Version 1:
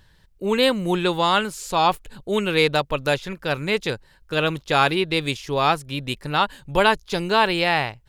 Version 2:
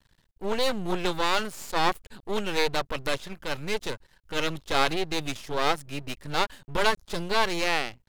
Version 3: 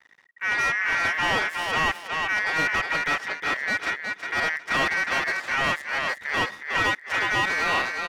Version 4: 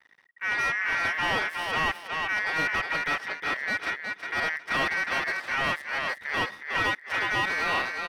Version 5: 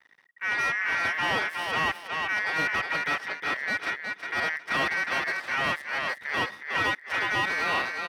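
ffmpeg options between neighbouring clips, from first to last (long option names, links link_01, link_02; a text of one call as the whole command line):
ffmpeg -i in.wav -af "aeval=exprs='max(val(0),0)':channel_layout=same,volume=-1.5dB" out.wav
ffmpeg -i in.wav -filter_complex "[0:a]aeval=exprs='val(0)*sin(2*PI*1900*n/s)':channel_layout=same,aecho=1:1:363|726|1089:0.398|0.0836|0.0176,asplit=2[link_01][link_02];[link_02]highpass=frequency=720:poles=1,volume=23dB,asoftclip=type=tanh:threshold=-5.5dB[link_03];[link_01][link_03]amix=inputs=2:normalize=0,lowpass=frequency=1100:poles=1,volume=-6dB,volume=-1.5dB" out.wav
ffmpeg -i in.wav -af "equalizer=frequency=7000:width=4.8:gain=-9.5,volume=-3dB" out.wav
ffmpeg -i in.wav -af "highpass=69" out.wav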